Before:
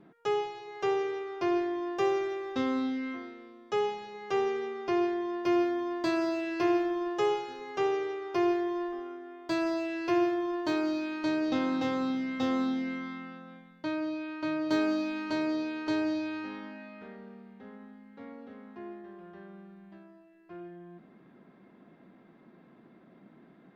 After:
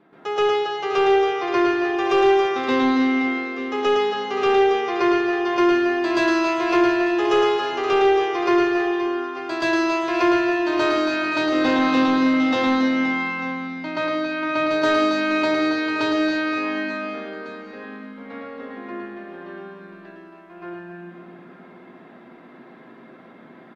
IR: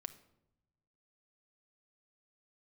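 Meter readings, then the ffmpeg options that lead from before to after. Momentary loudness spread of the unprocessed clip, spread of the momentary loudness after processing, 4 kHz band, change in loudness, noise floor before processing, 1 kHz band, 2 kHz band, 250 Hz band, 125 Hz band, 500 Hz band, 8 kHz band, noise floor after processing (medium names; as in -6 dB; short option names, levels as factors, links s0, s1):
19 LU, 18 LU, +14.0 dB, +11.0 dB, -58 dBFS, +13.0 dB, +15.5 dB, +9.5 dB, +7.5 dB, +11.0 dB, no reading, -46 dBFS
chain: -filter_complex "[0:a]aecho=1:1:110|275|522.5|893.8|1451:0.631|0.398|0.251|0.158|0.1,asplit=2[s0][s1];[1:a]atrim=start_sample=2205,asetrate=30870,aresample=44100,adelay=127[s2];[s1][s2]afir=irnorm=-1:irlink=0,volume=3.35[s3];[s0][s3]amix=inputs=2:normalize=0,asplit=2[s4][s5];[s5]highpass=f=720:p=1,volume=5.62,asoftclip=type=tanh:threshold=0.668[s6];[s4][s6]amix=inputs=2:normalize=0,lowpass=f=3300:p=1,volume=0.501,volume=0.668"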